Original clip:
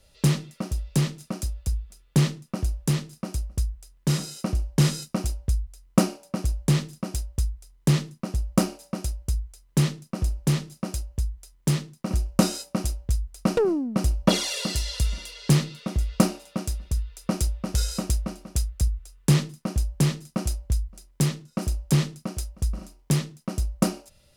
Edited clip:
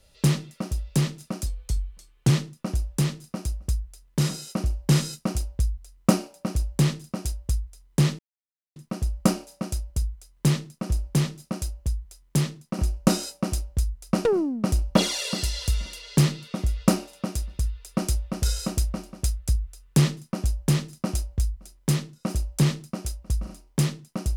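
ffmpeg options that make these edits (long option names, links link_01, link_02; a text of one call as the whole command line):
ffmpeg -i in.wav -filter_complex "[0:a]asplit=4[link_01][link_02][link_03][link_04];[link_01]atrim=end=1.464[link_05];[link_02]atrim=start=1.46:end=2.19,asetpts=PTS-STARTPTS,asetrate=38367,aresample=44100,atrim=end_sample=37003,asetpts=PTS-STARTPTS[link_06];[link_03]atrim=start=2.186:end=8.08,asetpts=PTS-STARTPTS,afade=type=out:start_time=5.89:duration=0.004:curve=hsin,apad=pad_dur=0.57[link_07];[link_04]atrim=start=8.08,asetpts=PTS-STARTPTS,afade=type=in:duration=0.004:curve=hsin[link_08];[link_05][link_06]acrossfade=duration=0.004:curve1=hsin:curve2=hsin[link_09];[link_07][link_08]concat=n=2:v=0:a=1[link_10];[link_09][link_10]acrossfade=duration=0.004:curve1=hsin:curve2=hsin" out.wav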